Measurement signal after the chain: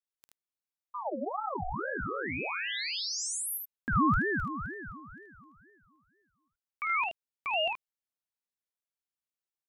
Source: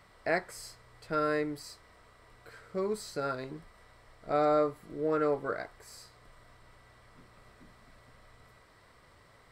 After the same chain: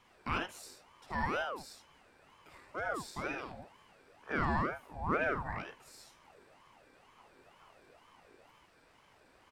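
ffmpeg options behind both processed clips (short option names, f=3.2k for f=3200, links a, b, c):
-af "aecho=1:1:51|77:0.422|0.562,aeval=exprs='val(0)*sin(2*PI*740*n/s+740*0.5/2.1*sin(2*PI*2.1*n/s))':c=same,volume=-3.5dB"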